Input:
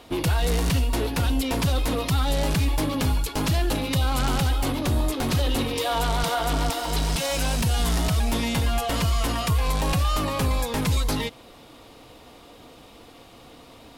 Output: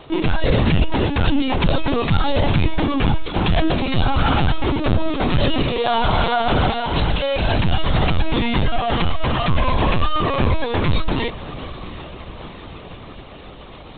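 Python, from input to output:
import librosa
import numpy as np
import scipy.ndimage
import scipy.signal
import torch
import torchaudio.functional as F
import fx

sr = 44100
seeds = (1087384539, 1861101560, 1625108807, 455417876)

y = fx.echo_diffused(x, sr, ms=783, feedback_pct=64, wet_db=-16)
y = fx.lpc_vocoder(y, sr, seeds[0], excitation='pitch_kept', order=16)
y = y * 10.0 ** (6.5 / 20.0)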